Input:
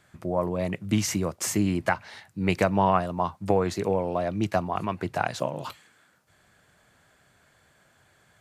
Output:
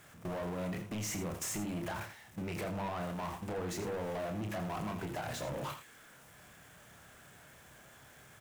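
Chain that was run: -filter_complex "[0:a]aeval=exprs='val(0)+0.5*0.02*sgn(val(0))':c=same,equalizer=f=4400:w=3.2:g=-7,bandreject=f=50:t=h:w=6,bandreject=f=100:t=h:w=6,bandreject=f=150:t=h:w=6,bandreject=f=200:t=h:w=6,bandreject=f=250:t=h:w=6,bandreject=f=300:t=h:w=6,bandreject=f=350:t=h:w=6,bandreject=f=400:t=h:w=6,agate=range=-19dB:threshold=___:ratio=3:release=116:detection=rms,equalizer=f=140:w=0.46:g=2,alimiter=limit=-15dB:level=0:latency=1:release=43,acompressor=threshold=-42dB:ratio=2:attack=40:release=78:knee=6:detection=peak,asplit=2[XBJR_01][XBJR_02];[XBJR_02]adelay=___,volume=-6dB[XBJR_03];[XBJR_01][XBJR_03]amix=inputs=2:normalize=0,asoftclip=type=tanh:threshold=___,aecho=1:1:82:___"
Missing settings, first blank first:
-30dB, 29, -34.5dB, 0.299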